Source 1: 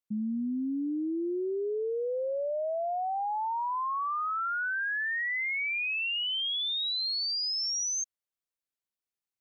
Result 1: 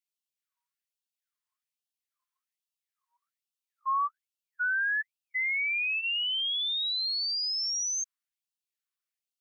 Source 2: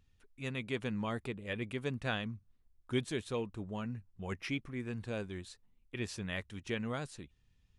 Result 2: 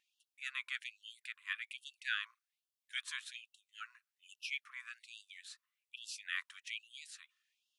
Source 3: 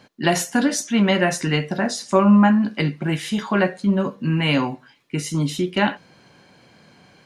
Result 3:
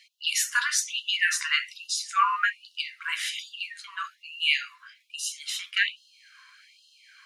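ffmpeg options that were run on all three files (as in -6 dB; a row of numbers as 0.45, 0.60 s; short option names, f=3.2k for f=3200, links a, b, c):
-af "tiltshelf=f=1.5k:g=3.5,afftfilt=real='re*gte(b*sr/1024,960*pow(2700/960,0.5+0.5*sin(2*PI*1.2*pts/sr)))':imag='im*gte(b*sr/1024,960*pow(2700/960,0.5+0.5*sin(2*PI*1.2*pts/sr)))':win_size=1024:overlap=0.75,volume=3.5dB"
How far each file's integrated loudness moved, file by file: +2.0, -4.5, -6.5 LU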